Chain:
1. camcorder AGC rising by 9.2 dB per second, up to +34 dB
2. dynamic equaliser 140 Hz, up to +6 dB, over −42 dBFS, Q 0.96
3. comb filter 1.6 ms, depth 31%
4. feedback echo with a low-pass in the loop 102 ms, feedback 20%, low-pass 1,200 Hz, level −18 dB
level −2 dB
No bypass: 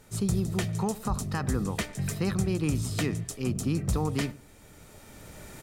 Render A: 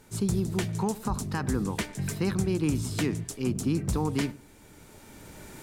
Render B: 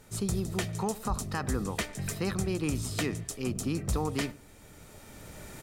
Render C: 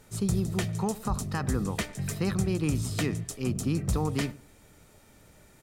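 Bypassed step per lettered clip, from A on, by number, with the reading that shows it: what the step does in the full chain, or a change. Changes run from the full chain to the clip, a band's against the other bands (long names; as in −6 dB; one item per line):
3, change in momentary loudness spread +4 LU
2, change in momentary loudness spread +12 LU
1, change in momentary loudness spread −2 LU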